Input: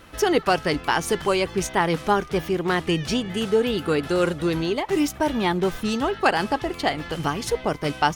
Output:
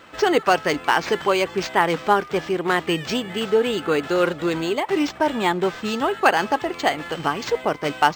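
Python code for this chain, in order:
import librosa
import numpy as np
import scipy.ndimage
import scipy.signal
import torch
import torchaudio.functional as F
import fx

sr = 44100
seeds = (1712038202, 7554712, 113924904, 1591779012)

y = fx.highpass(x, sr, hz=410.0, slope=6)
y = fx.high_shelf(y, sr, hz=8500.0, db=-5.0)
y = np.interp(np.arange(len(y)), np.arange(len(y))[::4], y[::4])
y = F.gain(torch.from_numpy(y), 4.5).numpy()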